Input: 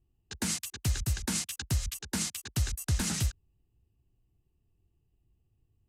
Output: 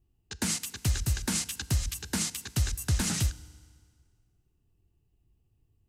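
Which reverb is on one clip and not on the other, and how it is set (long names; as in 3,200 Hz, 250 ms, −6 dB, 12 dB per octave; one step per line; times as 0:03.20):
feedback delay network reverb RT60 1.9 s, low-frequency decay 0.9×, high-frequency decay 0.85×, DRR 17 dB
level +2 dB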